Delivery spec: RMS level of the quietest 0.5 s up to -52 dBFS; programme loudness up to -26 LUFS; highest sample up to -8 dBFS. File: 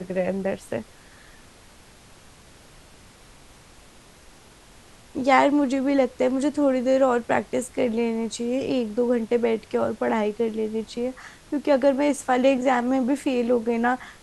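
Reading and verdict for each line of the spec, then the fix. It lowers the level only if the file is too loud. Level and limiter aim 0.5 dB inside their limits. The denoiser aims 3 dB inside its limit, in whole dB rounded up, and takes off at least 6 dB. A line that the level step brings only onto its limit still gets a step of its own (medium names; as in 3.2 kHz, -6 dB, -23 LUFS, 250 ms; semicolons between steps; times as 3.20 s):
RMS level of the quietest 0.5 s -50 dBFS: fail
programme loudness -23.5 LUFS: fail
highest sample -4.0 dBFS: fail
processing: trim -3 dB; peak limiter -8.5 dBFS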